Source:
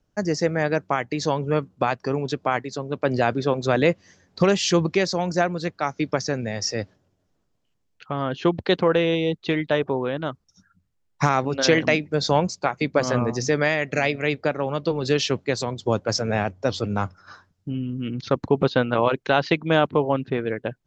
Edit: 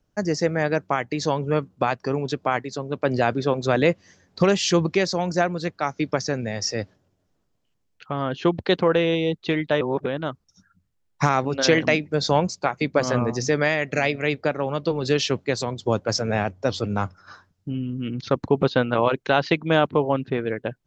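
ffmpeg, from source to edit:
-filter_complex "[0:a]asplit=3[a][b][c];[a]atrim=end=9.812[d];[b]atrim=start=9.808:end=10.062,asetpts=PTS-STARTPTS,areverse[e];[c]atrim=start=10.058[f];[d][e]acrossfade=d=0.004:c1=hsin:c2=hsin[g];[g][f]acrossfade=d=0.004:c1=hsin:c2=hsin"

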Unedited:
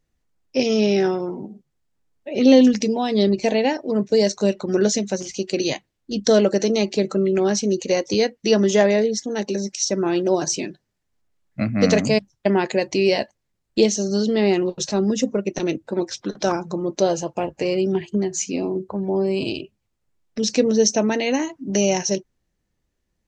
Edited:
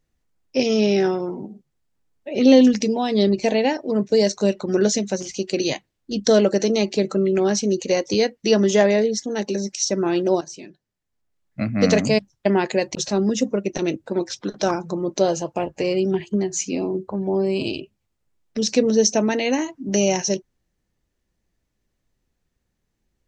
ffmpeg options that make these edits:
-filter_complex "[0:a]asplit=3[a][b][c];[a]atrim=end=10.41,asetpts=PTS-STARTPTS,afade=t=out:st=10.406:d=0.004:c=hsin:silence=0.141254[d];[b]atrim=start=10.41:end=12.952,asetpts=PTS-STARTPTS,afade=t=in:d=1.51:silence=0.141254[e];[c]atrim=start=14.758[f];[d][e]concat=n=2:v=0:a=1[g];[g][f]acrossfade=d=0.004:c1=hsin:c2=hsin"

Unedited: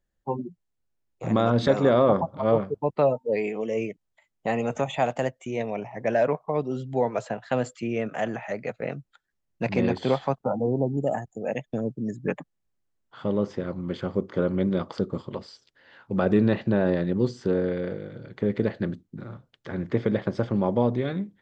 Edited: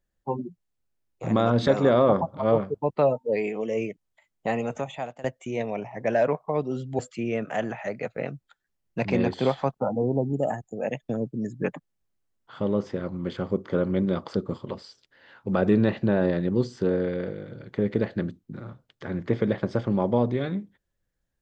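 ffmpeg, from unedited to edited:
-filter_complex "[0:a]asplit=3[a][b][c];[a]atrim=end=5.24,asetpts=PTS-STARTPTS,afade=t=out:st=4.47:d=0.77:silence=0.105925[d];[b]atrim=start=5.24:end=6.992,asetpts=PTS-STARTPTS,afade=t=in:d=0.004:c=hsin:silence=0.105925[e];[c]atrim=start=7.628[f];[d][e]concat=n=2:v=0:a=1[g];[g][f]acrossfade=d=0.004:c1=hsin:c2=hsin"

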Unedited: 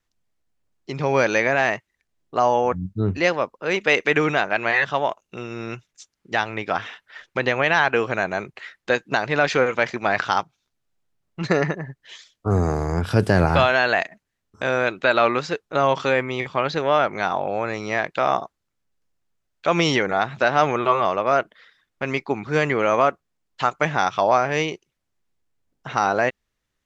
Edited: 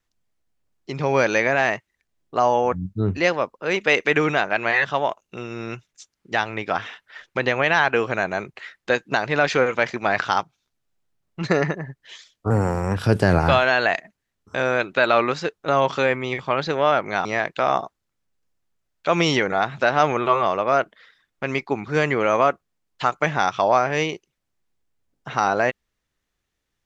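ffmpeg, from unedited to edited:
-filter_complex "[0:a]asplit=4[a][b][c][d];[a]atrim=end=12.504[e];[b]atrim=start=12.5:end=13.04,asetpts=PTS-STARTPTS,asetrate=50715,aresample=44100[f];[c]atrim=start=13.036:end=17.322[g];[d]atrim=start=17.838[h];[e][f]acrossfade=d=0.004:c1=hsin:c2=hsin[i];[i][g]acrossfade=d=0.004:c1=hsin:c2=hsin[j];[j][h]acrossfade=d=0.004:c1=hsin:c2=hsin"

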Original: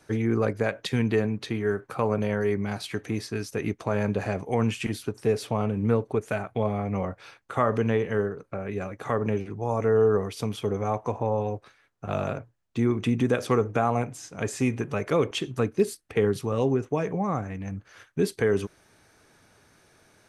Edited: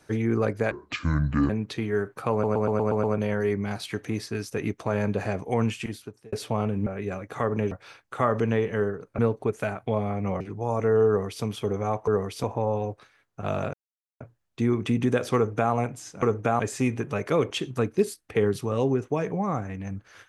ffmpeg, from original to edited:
-filter_complex "[0:a]asplit=19[a][b][c][d][e][f][g][h][i][j][k][l][m][n][o][p][q][r][s];[a]atrim=end=0.714[t];[b]atrim=start=0.71:end=1.22,asetpts=PTS-STARTPTS,asetrate=28665,aresample=44100[u];[c]atrim=start=1.216:end=2.162[v];[d]atrim=start=2.038:end=2.162[w];[e]atrim=start=2.038:end=2.162[x];[f]atrim=start=2.038:end=2.162[y];[g]atrim=start=2.038:end=2.162[z];[h]atrim=start=2.038:end=2.162[aa];[i]atrim=start=2.038:end=5.33,asetpts=PTS-STARTPTS,afade=t=out:st=2.602:d=0.69[ab];[j]atrim=start=5.33:end=5.872,asetpts=PTS-STARTPTS,afade=t=in:d=0.004:c=hsin[ac];[k]atrim=start=8.558:end=9.412[ad];[l]atrim=start=7.088:end=8.562[ae];[m]atrim=start=5.868:end=7.092[af];[n]atrim=start=9.408:end=11.082[ag];[o]atrim=start=10.078:end=10.442[ah];[p]atrim=start=11.078:end=12.38,asetpts=PTS-STARTPTS,afade=t=out:st=1.298:d=0.004:c=hsin,apad=pad_dur=0.47[ai];[q]atrim=start=12.38:end=14.402,asetpts=PTS-STARTPTS,afade=t=in:d=0.004:c=hsin[aj];[r]atrim=start=13.528:end=13.902[ak];[s]atrim=start=14.398[al];[t][u]acrossfade=d=0.004:c1=hsin:c2=hsin[am];[am][v]acrossfade=d=0.004:c1=hsin:c2=hsin[an];[an][w]acrossfade=d=0.004:c1=hsin:c2=hsin[ao];[ao][x]acrossfade=d=0.004:c1=hsin:c2=hsin[ap];[ap][y]acrossfade=d=0.004:c1=hsin:c2=hsin[aq];[aq][z]acrossfade=d=0.004:c1=hsin:c2=hsin[ar];[ar][aa]acrossfade=d=0.004:c1=hsin:c2=hsin[as];[ab][ac]concat=n=2:v=0:a=1[at];[as][at]acrossfade=d=0.004:c1=hsin:c2=hsin[au];[au][ad]acrossfade=d=0.004:c1=hsin:c2=hsin[av];[av][ae]acrossfade=d=0.004:c1=hsin:c2=hsin[aw];[aw][af]acrossfade=d=0.004:c1=hsin:c2=hsin[ax];[ax][ag]acrossfade=d=0.004:c1=hsin:c2=hsin[ay];[ay][ah]acrossfade=d=0.004:c1=hsin:c2=hsin[az];[ai][aj]concat=n=2:v=0:a=1[ba];[az][ba]acrossfade=d=0.004:c1=hsin:c2=hsin[bb];[bb][ak]acrossfade=d=0.004:c1=hsin:c2=hsin[bc];[bc][al]acrossfade=d=0.004:c1=hsin:c2=hsin"

